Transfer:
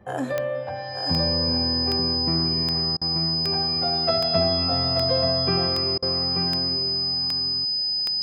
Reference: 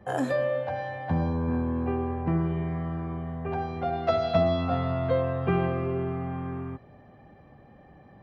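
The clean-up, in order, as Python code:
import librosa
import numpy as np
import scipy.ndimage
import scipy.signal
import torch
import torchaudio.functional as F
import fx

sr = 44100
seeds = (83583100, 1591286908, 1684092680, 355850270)

y = fx.fix_declick_ar(x, sr, threshold=10.0)
y = fx.notch(y, sr, hz=5000.0, q=30.0)
y = fx.fix_interpolate(y, sr, at_s=(2.97, 5.98), length_ms=43.0)
y = fx.fix_echo_inverse(y, sr, delay_ms=883, level_db=-6.5)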